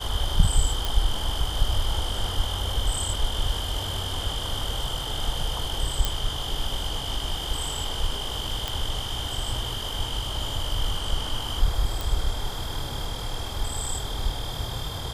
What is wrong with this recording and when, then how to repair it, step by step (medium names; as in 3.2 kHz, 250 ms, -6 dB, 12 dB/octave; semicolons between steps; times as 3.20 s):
0.85 s: pop
6.05 s: pop
8.68 s: pop
12.01 s: pop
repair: de-click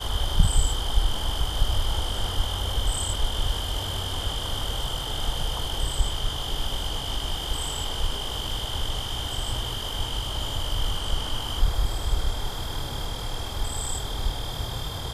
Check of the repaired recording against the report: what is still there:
nothing left